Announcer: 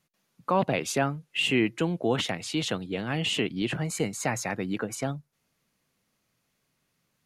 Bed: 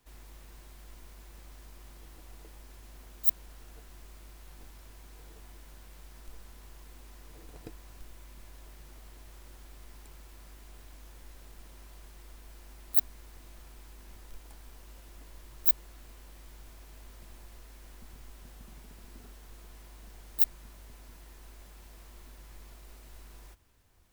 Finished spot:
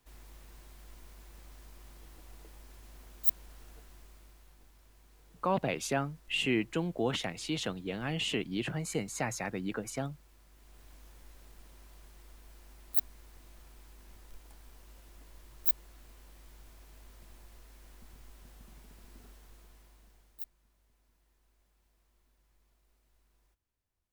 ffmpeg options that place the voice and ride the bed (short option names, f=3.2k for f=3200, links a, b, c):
-filter_complex "[0:a]adelay=4950,volume=-5.5dB[a];[1:a]volume=4dB,afade=t=out:st=3.68:d=0.92:silence=0.398107,afade=t=in:st=10.5:d=0.41:silence=0.501187,afade=t=out:st=19.29:d=1.21:silence=0.141254[b];[a][b]amix=inputs=2:normalize=0"